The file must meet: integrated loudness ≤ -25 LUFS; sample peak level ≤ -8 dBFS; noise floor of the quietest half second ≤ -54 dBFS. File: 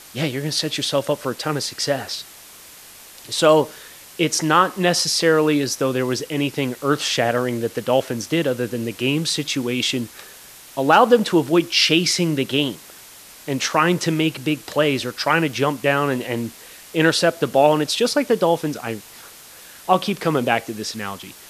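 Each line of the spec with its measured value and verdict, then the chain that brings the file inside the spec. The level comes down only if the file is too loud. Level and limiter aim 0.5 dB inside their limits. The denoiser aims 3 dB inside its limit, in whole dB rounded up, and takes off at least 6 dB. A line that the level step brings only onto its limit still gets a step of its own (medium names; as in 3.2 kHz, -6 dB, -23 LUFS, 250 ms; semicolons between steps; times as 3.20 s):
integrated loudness -20.0 LUFS: fail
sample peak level -2.5 dBFS: fail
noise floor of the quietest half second -43 dBFS: fail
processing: noise reduction 9 dB, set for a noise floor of -43 dBFS; trim -5.5 dB; peak limiter -8.5 dBFS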